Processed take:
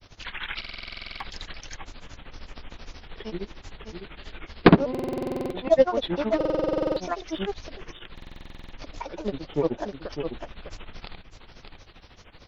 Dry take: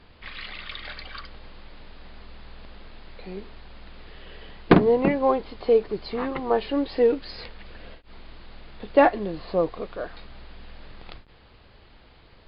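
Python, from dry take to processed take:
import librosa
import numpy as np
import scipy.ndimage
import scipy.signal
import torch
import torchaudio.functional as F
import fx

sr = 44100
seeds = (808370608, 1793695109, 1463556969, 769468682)

p1 = fx.high_shelf(x, sr, hz=4200.0, db=8.5)
p2 = fx.transient(p1, sr, attack_db=-4, sustain_db=-8)
p3 = fx.granulator(p2, sr, seeds[0], grain_ms=100.0, per_s=13.0, spray_ms=100.0, spread_st=7)
p4 = p3 + fx.echo_single(p3, sr, ms=604, db=-7.0, dry=0)
p5 = fx.buffer_glitch(p4, sr, at_s=(0.6, 4.9, 6.36, 8.13), block=2048, repeats=12)
y = p5 * 10.0 ** (5.0 / 20.0)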